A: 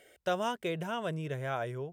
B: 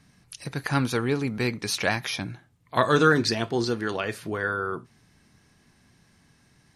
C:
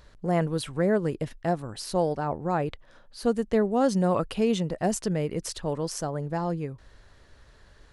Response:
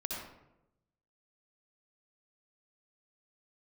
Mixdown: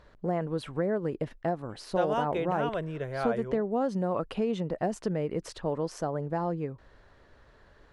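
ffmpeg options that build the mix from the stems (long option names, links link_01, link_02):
-filter_complex "[0:a]dynaudnorm=framelen=120:gausssize=5:maxgain=7.5dB,adelay=1700,volume=-2.5dB[link_01];[2:a]acompressor=threshold=-25dB:ratio=6,volume=3dB[link_02];[link_01][link_02]amix=inputs=2:normalize=0,lowpass=frequency=1300:poles=1,lowshelf=frequency=180:gain=-9"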